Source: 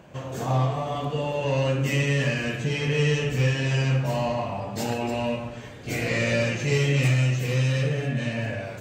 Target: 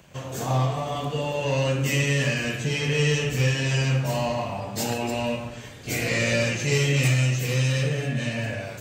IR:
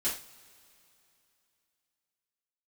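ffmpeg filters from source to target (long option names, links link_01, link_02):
-filter_complex "[0:a]highshelf=frequency=4300:gain=9,acrossover=split=160|1800[link_01][link_02][link_03];[link_02]aeval=exprs='sgn(val(0))*max(abs(val(0))-0.002,0)':channel_layout=same[link_04];[link_01][link_04][link_03]amix=inputs=3:normalize=0"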